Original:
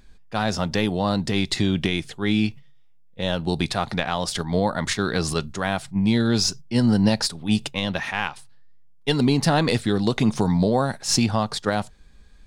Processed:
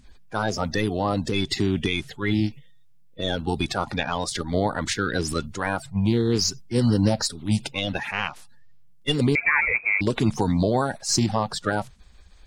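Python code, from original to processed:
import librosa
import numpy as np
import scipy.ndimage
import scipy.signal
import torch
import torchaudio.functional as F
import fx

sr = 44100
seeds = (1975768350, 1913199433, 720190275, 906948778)

y = fx.spec_quant(x, sr, step_db=30)
y = fx.freq_invert(y, sr, carrier_hz=2500, at=(9.35, 10.01))
y = y * 10.0 ** (-1.0 / 20.0)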